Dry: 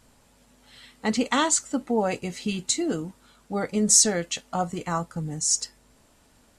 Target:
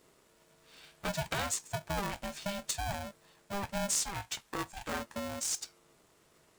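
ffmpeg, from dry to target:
ffmpeg -i in.wav -filter_complex "[0:a]asettb=1/sr,asplit=3[link_01][link_02][link_03];[link_01]atrim=end=4.034[link_04];[link_02]atrim=start=4.03:end=4.89,asetpts=PTS-STARTPTS,afade=type=in:duration=0.004:curve=qsin,afade=type=out:start_time=0.856:duration=0.004:curve=qsin,highpass=frequency=370:width=0.5412,highpass=frequency=370:width=1.3066[link_05];[link_03]atrim=start=4.886[link_06];[link_04][link_05]acrossfade=duration=0.004:curve1=hsin:curve2=qsin[link_07];[link_07][link_06]acrossfade=duration=0.004:curve1=qsin:curve2=hsin,acompressor=threshold=-28dB:ratio=2,aeval=exprs='val(0)*sgn(sin(2*PI*400*n/s))':channel_layout=same,volume=-6.5dB" out.wav

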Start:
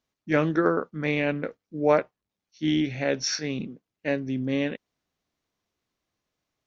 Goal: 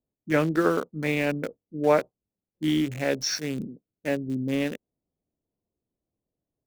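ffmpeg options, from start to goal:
ffmpeg -i in.wav -filter_complex "[0:a]asettb=1/sr,asplit=3[link_01][link_02][link_03];[link_01]atrim=end=3.504[link_04];[link_02]atrim=start=3.5:end=4.19,asetpts=PTS-STARTPTS,afade=type=in:duration=0.004:curve=qsin,afade=type=out:start_time=0.686:duration=0.004:curve=qsin,highshelf=frequency=2200:gain=-3.5[link_05];[link_03]atrim=start=4.186[link_06];[link_04][link_05]acrossfade=duration=0.004:curve1=hsin:curve2=qsin[link_07];[link_07][link_06]acrossfade=duration=0.004:curve1=qsin:curve2=hsin,acrossover=split=700[link_08][link_09];[link_09]aeval=exprs='val(0)*gte(abs(val(0)),0.0158)':channel_layout=same[link_10];[link_08][link_10]amix=inputs=2:normalize=0" out.wav

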